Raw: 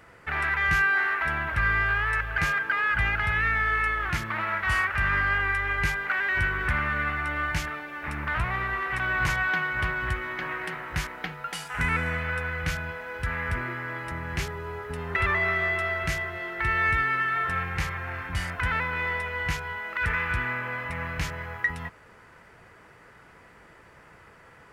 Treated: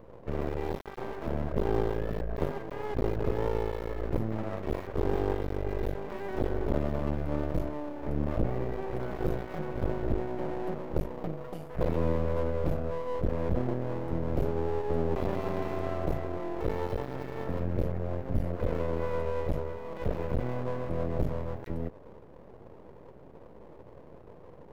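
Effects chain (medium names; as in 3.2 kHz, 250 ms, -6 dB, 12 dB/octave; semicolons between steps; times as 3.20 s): one-sided wavefolder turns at -23.5 dBFS; FFT filter 100 Hz 0 dB, 570 Hz +6 dB, 1 kHz -26 dB, 8.6 kHz -30 dB, 13 kHz -15 dB; half-wave rectifier; trim +7.5 dB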